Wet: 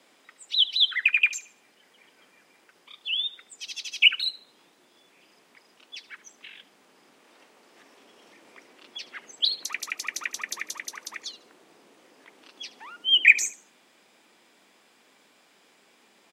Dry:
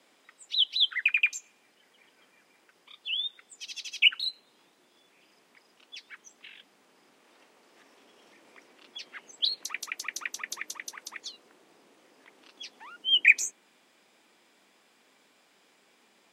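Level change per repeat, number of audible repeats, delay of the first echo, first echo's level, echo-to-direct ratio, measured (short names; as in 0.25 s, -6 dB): -10.5 dB, 2, 74 ms, -18.0 dB, -17.5 dB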